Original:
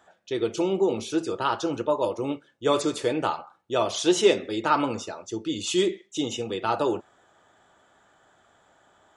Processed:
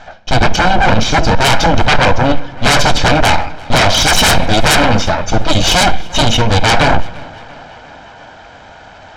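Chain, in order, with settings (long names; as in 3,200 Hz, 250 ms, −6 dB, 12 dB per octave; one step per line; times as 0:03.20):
lower of the sound and its delayed copy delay 1.3 ms
Butterworth low-pass 6,000 Hz 36 dB per octave
low-shelf EQ 66 Hz +10.5 dB
sine wavefolder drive 20 dB, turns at −6 dBFS
tape delay 346 ms, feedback 86%, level −17.5 dB, low-pass 3,500 Hz
on a send at −18.5 dB: convolution reverb RT60 0.75 s, pre-delay 4 ms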